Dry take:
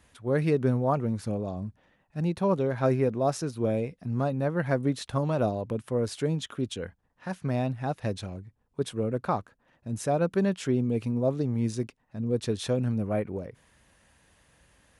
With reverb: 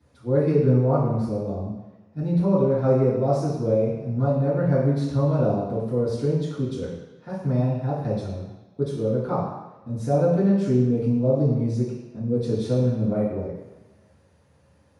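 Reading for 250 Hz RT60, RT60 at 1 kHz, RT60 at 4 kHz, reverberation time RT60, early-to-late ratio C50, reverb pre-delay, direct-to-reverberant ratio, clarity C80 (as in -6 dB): 1.0 s, 1.2 s, 1.3 s, 1.1 s, 1.0 dB, 3 ms, -12.5 dB, 4.5 dB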